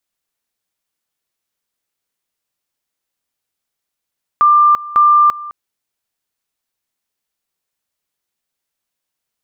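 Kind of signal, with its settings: two-level tone 1.19 kHz -6 dBFS, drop 19 dB, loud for 0.34 s, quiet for 0.21 s, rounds 2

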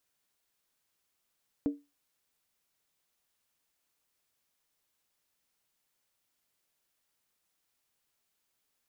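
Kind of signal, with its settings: skin hit, lowest mode 287 Hz, decay 0.24 s, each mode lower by 11.5 dB, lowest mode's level -22.5 dB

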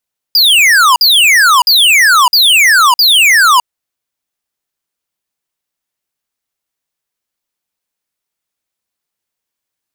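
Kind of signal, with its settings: burst of laser zaps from 5 kHz, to 940 Hz, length 0.61 s square, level -6.5 dB, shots 5, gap 0.05 s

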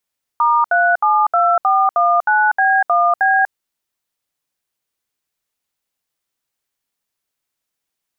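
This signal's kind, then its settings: DTMF "*372419B1B", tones 243 ms, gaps 69 ms, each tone -13.5 dBFS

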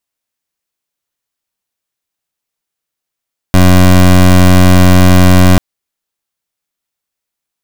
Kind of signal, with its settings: pulse 91.3 Hz, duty 21% -4 dBFS 2.04 s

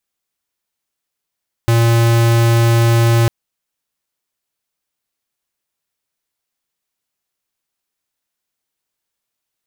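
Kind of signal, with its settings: tone square 116 Hz -11.5 dBFS 1.60 s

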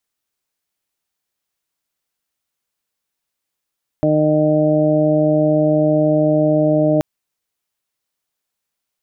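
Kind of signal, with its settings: steady additive tone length 2.98 s, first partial 153 Hz, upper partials 3/-6/4/-12 dB, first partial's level -19 dB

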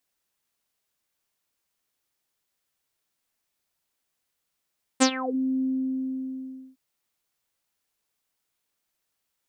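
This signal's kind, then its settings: synth note saw C4 24 dB/octave, low-pass 300 Hz, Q 7.8, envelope 5 oct, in 0.34 s, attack 22 ms, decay 0.08 s, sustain -17 dB, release 1.14 s, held 0.62 s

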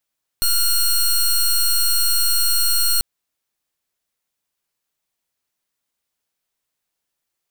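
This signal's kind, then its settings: pulse 4.27 kHz, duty 15% -16.5 dBFS 2.59 s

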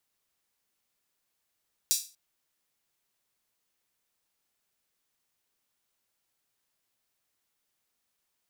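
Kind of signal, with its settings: open hi-hat length 0.24 s, high-pass 5.1 kHz, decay 0.33 s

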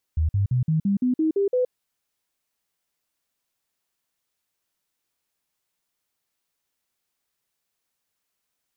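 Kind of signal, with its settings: stepped sine 79 Hz up, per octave 3, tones 9, 0.12 s, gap 0.05 s -18 dBFS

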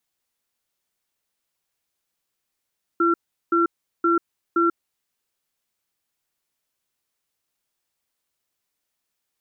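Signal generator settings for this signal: cadence 338 Hz, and 1.36 kHz, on 0.14 s, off 0.38 s, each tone -18.5 dBFS 1.79 s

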